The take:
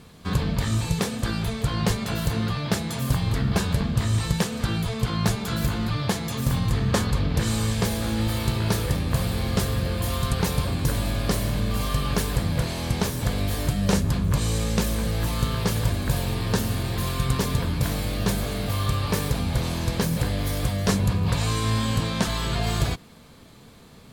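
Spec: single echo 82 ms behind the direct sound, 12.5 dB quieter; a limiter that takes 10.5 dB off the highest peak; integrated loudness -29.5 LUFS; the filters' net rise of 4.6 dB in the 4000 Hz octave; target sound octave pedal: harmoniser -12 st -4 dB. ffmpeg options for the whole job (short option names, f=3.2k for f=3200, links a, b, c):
-filter_complex "[0:a]equalizer=f=4k:t=o:g=5.5,alimiter=limit=-17dB:level=0:latency=1,aecho=1:1:82:0.237,asplit=2[a][b];[b]asetrate=22050,aresample=44100,atempo=2,volume=-4dB[c];[a][c]amix=inputs=2:normalize=0,volume=-4dB"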